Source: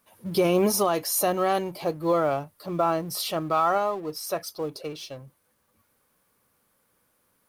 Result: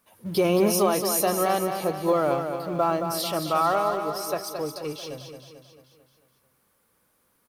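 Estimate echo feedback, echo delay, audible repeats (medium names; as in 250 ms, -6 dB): 53%, 221 ms, 6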